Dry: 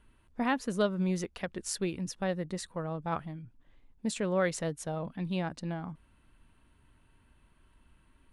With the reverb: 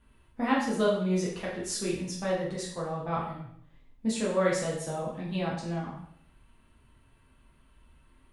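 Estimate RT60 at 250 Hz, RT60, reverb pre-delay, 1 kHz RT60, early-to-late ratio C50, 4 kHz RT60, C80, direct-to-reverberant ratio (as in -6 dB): 0.65 s, 0.65 s, 4 ms, 0.65 s, 3.0 dB, 0.60 s, 6.5 dB, -6.0 dB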